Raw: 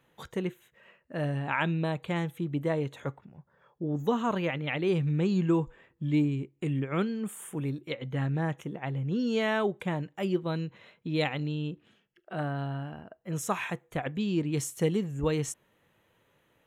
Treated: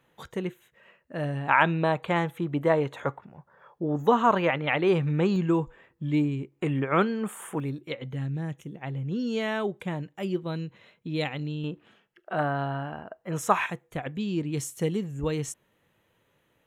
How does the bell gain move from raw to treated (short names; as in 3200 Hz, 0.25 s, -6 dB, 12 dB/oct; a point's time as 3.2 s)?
bell 1000 Hz 2.6 oct
+1.5 dB
from 1.49 s +10.5 dB
from 5.36 s +3.5 dB
from 6.52 s +12 dB
from 7.6 s +1.5 dB
from 8.14 s -10.5 dB
from 8.81 s -2 dB
from 11.64 s +9.5 dB
from 13.66 s -1.5 dB